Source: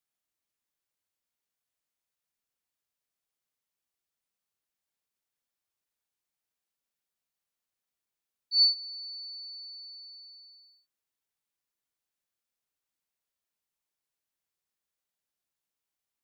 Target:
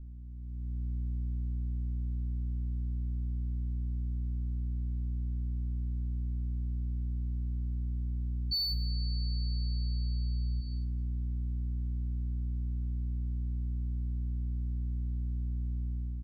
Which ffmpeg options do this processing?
ffmpeg -i in.wav -filter_complex "[0:a]aeval=exprs='val(0)+0.000891*(sin(2*PI*60*n/s)+sin(2*PI*2*60*n/s)/2+sin(2*PI*3*60*n/s)/3+sin(2*PI*4*60*n/s)/4+sin(2*PI*5*60*n/s)/5)':channel_layout=same,asplit=3[link_01][link_02][link_03];[link_01]afade=type=out:start_time=8.58:duration=0.02[link_04];[link_02]bass=frequency=250:gain=8,treble=frequency=4000:gain=-8,afade=type=in:start_time=8.58:duration=0.02,afade=type=out:start_time=10.6:duration=0.02[link_05];[link_03]afade=type=in:start_time=10.6:duration=0.02[link_06];[link_04][link_05][link_06]amix=inputs=3:normalize=0,asoftclip=type=tanh:threshold=-32.5dB,aecho=1:1:62|124|186|248|310|372:0.211|0.118|0.0663|0.0371|0.0208|0.0116,dynaudnorm=framelen=120:gausssize=11:maxgain=13.5dB,aemphasis=mode=reproduction:type=riaa,acompressor=threshold=-33dB:ratio=6,volume=3.5dB" out.wav

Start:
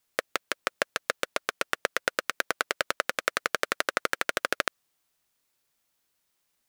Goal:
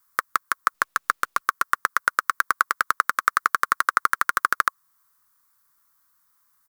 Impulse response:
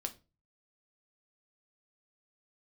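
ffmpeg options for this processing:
-filter_complex "[0:a]firequalizer=gain_entry='entry(130,0);entry(320,-7);entry(640,-13);entry(1100,14);entry(2600,-10);entry(4500,-2);entry(14000,9)':delay=0.05:min_phase=1,asplit=2[link_01][link_02];[link_02]alimiter=limit=-10dB:level=0:latency=1:release=334,volume=0dB[link_03];[link_01][link_03]amix=inputs=2:normalize=0,asettb=1/sr,asplit=3[link_04][link_05][link_06];[link_04]atrim=end=0.744[link_07];[link_05]atrim=start=0.74:end=1.41,asetpts=PTS-STARTPTS,afade=type=in:duration=0.004:curve=qsin,afade=type=out:start_time=0.666:duration=0.004:curve=qsin,acrusher=bits=8:dc=4:mix=0:aa=0.000001[link_08];[link_06]atrim=start=1.406[link_09];[link_07][link_08]acrossfade=duration=0.004:curve1=hsin:curve2=qsin[link_10];[link_10][link_09]acrossfade=duration=0.004:curve1=qsin:curve2=hsin,volume=-2.5dB"

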